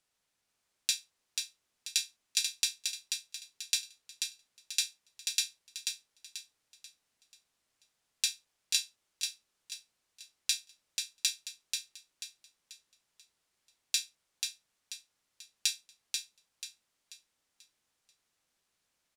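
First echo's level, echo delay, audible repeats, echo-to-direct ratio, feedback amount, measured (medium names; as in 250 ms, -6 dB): -5.0 dB, 487 ms, 4, -4.5 dB, 37%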